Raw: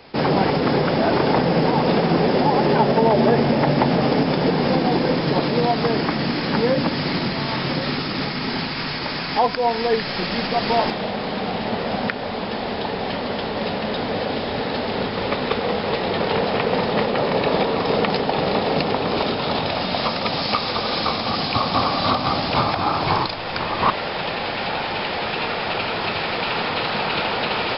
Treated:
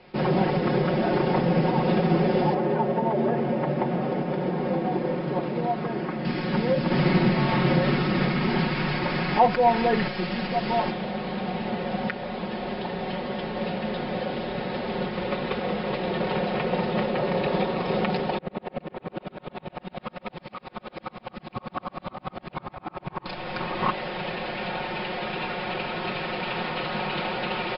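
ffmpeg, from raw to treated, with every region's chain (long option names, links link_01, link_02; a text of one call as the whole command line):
ffmpeg -i in.wav -filter_complex "[0:a]asettb=1/sr,asplit=3[link_01][link_02][link_03];[link_01]atrim=end=2.544[link_04];[link_02]atrim=start=2.54:end=6.25,asetpts=PTS-STARTPTS,afade=type=in:duration=0.004:curve=qsin,afade=type=out:start_time=3.706:duration=0.004:curve=qsin,lowpass=frequency=1300:poles=1,acrusher=bits=8:mix=0:aa=0.5,lowshelf=frequency=160:gain=-10.5[link_05];[link_03]atrim=start=6.246[link_06];[link_04][link_05]acrossfade=duration=0.004:curve1=hsin:curve2=qsin[link_07];[link_07][link_06]acrossfade=duration=0.004:curve1=qsin:curve2=hsin,asettb=1/sr,asplit=3[link_08][link_09][link_10];[link_08]atrim=end=6.904[link_11];[link_09]atrim=start=6.9:end=10.08,asetpts=PTS-STARTPTS,afade=type=in:duration=0.004:curve=qsin,afade=type=out:start_time=3.176:duration=0.004:curve=qsin,highshelf=frequency=4000:gain=-8.5,acontrast=78[link_12];[link_10]atrim=start=10.076[link_13];[link_11][link_12]acrossfade=duration=0.004:curve1=hsin:curve2=qsin[link_14];[link_14][link_13]acrossfade=duration=0.004:curve1=qsin:curve2=hsin,asettb=1/sr,asplit=3[link_15][link_16][link_17];[link_15]atrim=end=18.384[link_18];[link_16]atrim=start=18.38:end=23.26,asetpts=PTS-STARTPTS,afade=type=in:duration=0.004:curve=qsin,afade=type=out:start_time=4.876:duration=0.004:curve=qsin,lowpass=2700,aeval=exprs='val(0)*pow(10,-40*if(lt(mod(-10*n/s,1),2*abs(-10)/1000),1-mod(-10*n/s,1)/(2*abs(-10)/1000),(mod(-10*n/s,1)-2*abs(-10)/1000)/(1-2*abs(-10)/1000))/20)':channel_layout=same[link_19];[link_17]atrim=start=23.256[link_20];[link_18][link_19]acrossfade=duration=0.004:curve1=hsin:curve2=qsin[link_21];[link_21][link_20]acrossfade=duration=0.004:curve1=qsin:curve2=hsin,lowpass=2900,equalizer=frequency=1100:width_type=o:width=1.9:gain=-4,aecho=1:1:5.5:0.71,volume=-5dB" out.wav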